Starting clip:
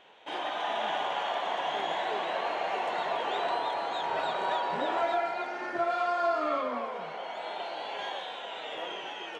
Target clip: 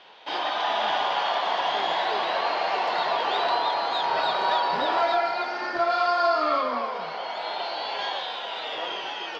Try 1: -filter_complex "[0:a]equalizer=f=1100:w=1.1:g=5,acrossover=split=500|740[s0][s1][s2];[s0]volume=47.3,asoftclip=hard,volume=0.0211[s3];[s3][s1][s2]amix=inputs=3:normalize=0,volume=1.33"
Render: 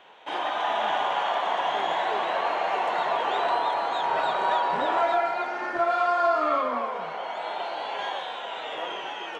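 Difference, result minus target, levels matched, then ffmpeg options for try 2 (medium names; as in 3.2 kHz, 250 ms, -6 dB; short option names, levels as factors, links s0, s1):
4 kHz band -5.0 dB
-filter_complex "[0:a]lowpass=f=4800:t=q:w=6.3,equalizer=f=1100:w=1.1:g=5,acrossover=split=500|740[s0][s1][s2];[s0]volume=47.3,asoftclip=hard,volume=0.0211[s3];[s3][s1][s2]amix=inputs=3:normalize=0,volume=1.33"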